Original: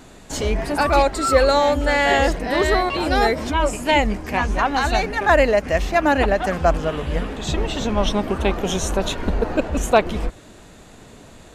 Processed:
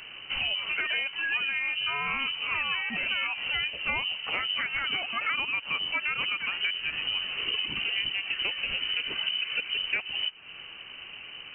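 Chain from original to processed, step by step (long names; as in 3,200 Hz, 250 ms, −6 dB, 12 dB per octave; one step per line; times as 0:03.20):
voice inversion scrambler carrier 3,000 Hz
downward compressor 6 to 1, threshold −28 dBFS, peak gain reduction 17.5 dB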